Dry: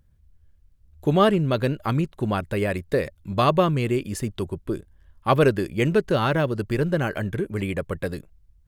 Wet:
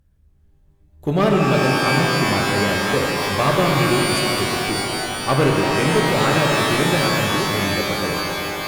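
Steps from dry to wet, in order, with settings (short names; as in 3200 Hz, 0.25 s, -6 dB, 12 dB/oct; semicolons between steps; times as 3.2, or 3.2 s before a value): one-sided clip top -16.5 dBFS; shimmer reverb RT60 3.7 s, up +12 st, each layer -2 dB, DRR 0 dB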